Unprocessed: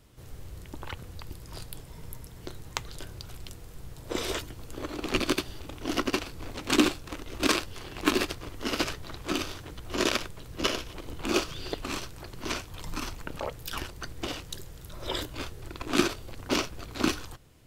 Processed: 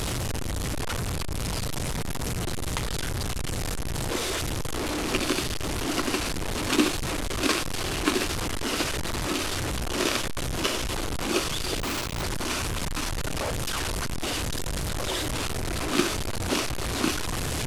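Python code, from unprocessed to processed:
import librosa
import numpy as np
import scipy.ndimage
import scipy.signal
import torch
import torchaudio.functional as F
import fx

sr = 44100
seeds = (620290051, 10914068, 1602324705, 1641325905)

y = fx.delta_mod(x, sr, bps=64000, step_db=-22.5)
y = fx.schmitt(y, sr, flips_db=-28.0, at=(11.79, 12.23))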